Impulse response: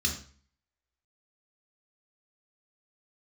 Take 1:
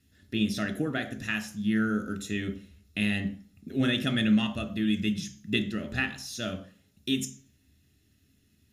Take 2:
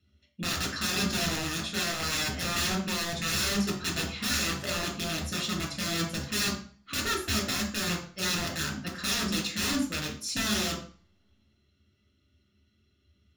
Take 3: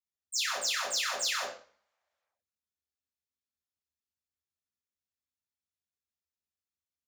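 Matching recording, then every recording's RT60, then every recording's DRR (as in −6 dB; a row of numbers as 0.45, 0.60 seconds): 2; 0.45, 0.45, 0.45 seconds; 8.5, 1.0, −5.5 decibels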